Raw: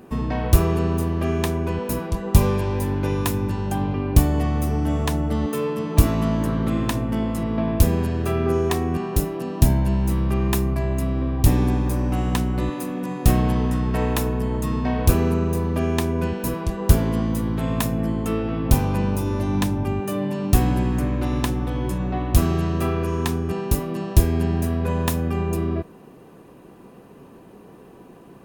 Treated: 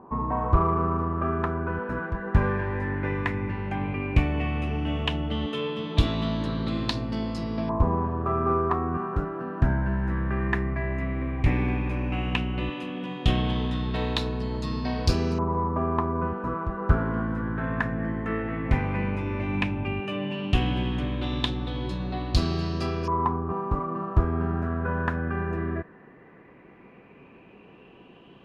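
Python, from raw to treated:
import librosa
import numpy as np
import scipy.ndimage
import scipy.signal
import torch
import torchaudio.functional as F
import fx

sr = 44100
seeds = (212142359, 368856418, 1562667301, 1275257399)

y = fx.filter_lfo_lowpass(x, sr, shape='saw_up', hz=0.13, low_hz=990.0, high_hz=5100.0, q=6.4)
y = fx.cheby_harmonics(y, sr, harmonics=(6,), levels_db=(-35,), full_scale_db=-1.0)
y = y * 10.0 ** (-6.0 / 20.0)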